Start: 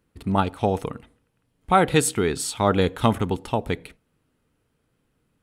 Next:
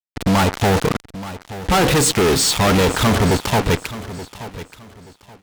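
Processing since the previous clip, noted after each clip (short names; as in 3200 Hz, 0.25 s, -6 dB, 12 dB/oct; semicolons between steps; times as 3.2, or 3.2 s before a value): LPF 7400 Hz 24 dB/oct; fuzz box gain 45 dB, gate -37 dBFS; feedback echo 0.878 s, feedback 26%, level -15 dB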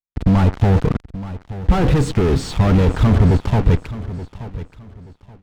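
RIAA curve playback; gain -6.5 dB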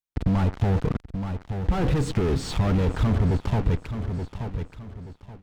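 compressor 2:1, threshold -25 dBFS, peak gain reduction 10 dB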